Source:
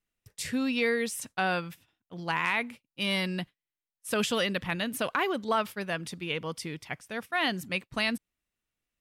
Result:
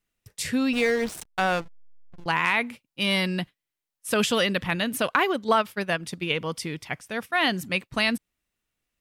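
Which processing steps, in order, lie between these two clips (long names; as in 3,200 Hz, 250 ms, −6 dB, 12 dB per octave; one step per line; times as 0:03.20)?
0:00.73–0:02.26: slack as between gear wheels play −29 dBFS
0:05.03–0:06.37: transient designer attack +3 dB, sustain −6 dB
level +5 dB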